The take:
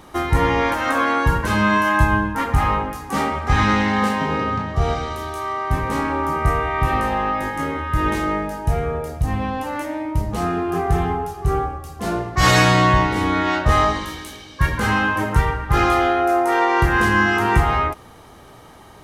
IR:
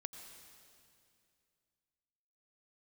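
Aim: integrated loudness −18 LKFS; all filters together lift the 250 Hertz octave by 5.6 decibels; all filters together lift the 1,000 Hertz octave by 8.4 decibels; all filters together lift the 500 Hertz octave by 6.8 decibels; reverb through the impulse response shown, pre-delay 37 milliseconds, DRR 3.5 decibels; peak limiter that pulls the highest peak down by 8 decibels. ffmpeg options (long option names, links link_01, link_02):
-filter_complex "[0:a]equalizer=frequency=250:width_type=o:gain=5.5,equalizer=frequency=500:width_type=o:gain=4.5,equalizer=frequency=1000:width_type=o:gain=9,alimiter=limit=-5.5dB:level=0:latency=1,asplit=2[link_01][link_02];[1:a]atrim=start_sample=2205,adelay=37[link_03];[link_02][link_03]afir=irnorm=-1:irlink=0,volume=0dB[link_04];[link_01][link_04]amix=inputs=2:normalize=0,volume=-4dB"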